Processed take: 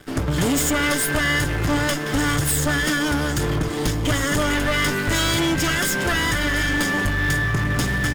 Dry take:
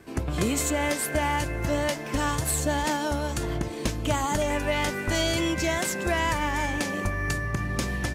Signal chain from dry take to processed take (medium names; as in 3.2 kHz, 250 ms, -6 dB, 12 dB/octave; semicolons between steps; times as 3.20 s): comb filter that takes the minimum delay 0.58 ms; comb 6.9 ms, depth 40%; waveshaping leveller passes 3; trim -1.5 dB